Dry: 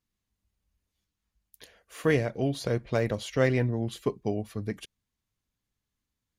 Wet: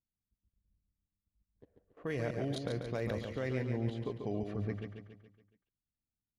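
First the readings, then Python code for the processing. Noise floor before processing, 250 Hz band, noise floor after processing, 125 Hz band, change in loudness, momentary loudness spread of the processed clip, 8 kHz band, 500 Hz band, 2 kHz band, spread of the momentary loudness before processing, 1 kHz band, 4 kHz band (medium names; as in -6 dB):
under -85 dBFS, -7.5 dB, under -85 dBFS, -7.0 dB, -8.5 dB, 9 LU, -13.5 dB, -9.0 dB, -10.5 dB, 11 LU, -8.5 dB, -9.0 dB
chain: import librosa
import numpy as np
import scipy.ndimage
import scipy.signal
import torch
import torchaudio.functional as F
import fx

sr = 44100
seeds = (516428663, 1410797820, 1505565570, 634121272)

y = fx.env_lowpass(x, sr, base_hz=310.0, full_db=-24.0)
y = fx.level_steps(y, sr, step_db=20)
y = fx.echo_feedback(y, sr, ms=140, feedback_pct=50, wet_db=-6.0)
y = F.gain(torch.from_numpy(y), 4.5).numpy()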